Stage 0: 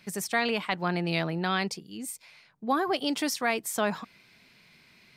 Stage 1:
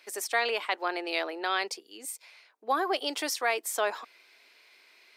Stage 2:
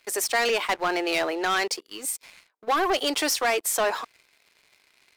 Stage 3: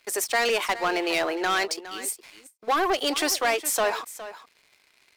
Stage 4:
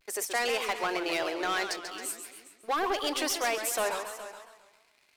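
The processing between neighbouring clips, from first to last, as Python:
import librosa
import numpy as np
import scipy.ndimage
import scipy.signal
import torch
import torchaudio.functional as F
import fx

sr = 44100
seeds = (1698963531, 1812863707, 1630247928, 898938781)

y1 = scipy.signal.sosfilt(scipy.signal.cheby2(4, 40, 180.0, 'highpass', fs=sr, output='sos'), x)
y2 = fx.leveller(y1, sr, passes=3)
y2 = y2 * 10.0 ** (-2.0 / 20.0)
y3 = y2 + 10.0 ** (-14.5 / 20.0) * np.pad(y2, (int(412 * sr / 1000.0), 0))[:len(y2)]
y3 = fx.end_taper(y3, sr, db_per_s=350.0)
y4 = fx.vibrato(y3, sr, rate_hz=0.41, depth_cents=38.0)
y4 = fx.echo_warbled(y4, sr, ms=134, feedback_pct=49, rate_hz=2.8, cents=177, wet_db=-8.5)
y4 = y4 * 10.0 ** (-6.0 / 20.0)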